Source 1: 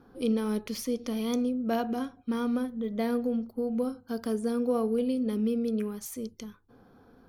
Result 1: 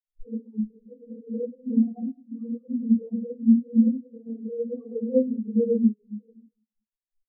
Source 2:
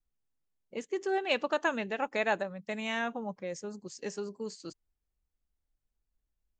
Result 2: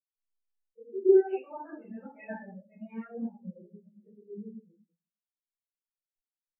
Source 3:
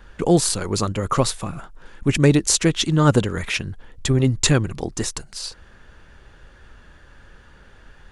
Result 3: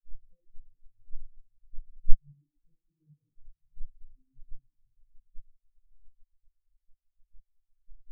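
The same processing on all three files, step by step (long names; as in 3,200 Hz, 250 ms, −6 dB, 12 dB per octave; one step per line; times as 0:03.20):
spectral magnitudes quantised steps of 30 dB
treble cut that deepens with the level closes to 690 Hz, closed at −19 dBFS
low-shelf EQ 64 Hz +10.5 dB
downward compressor 5 to 1, threshold −29 dBFS
rectangular room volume 820 cubic metres, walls mixed, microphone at 5.9 metres
every bin expanded away from the loudest bin 4 to 1
level −1.5 dB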